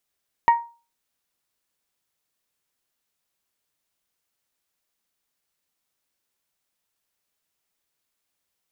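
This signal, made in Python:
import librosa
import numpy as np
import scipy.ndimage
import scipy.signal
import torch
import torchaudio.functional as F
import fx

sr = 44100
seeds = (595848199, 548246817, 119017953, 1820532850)

y = fx.strike_glass(sr, length_s=0.89, level_db=-9.0, body='bell', hz=936.0, decay_s=0.34, tilt_db=12, modes=5)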